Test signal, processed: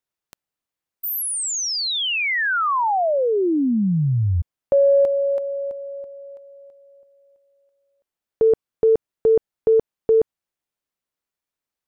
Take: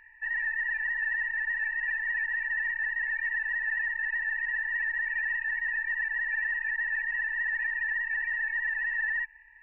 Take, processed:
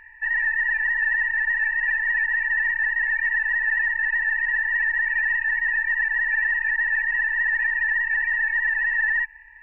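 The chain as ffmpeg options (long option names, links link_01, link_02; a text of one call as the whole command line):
ffmpeg -i in.wav -af "highshelf=frequency=2400:gain=-6.5,acontrast=26,volume=5dB" out.wav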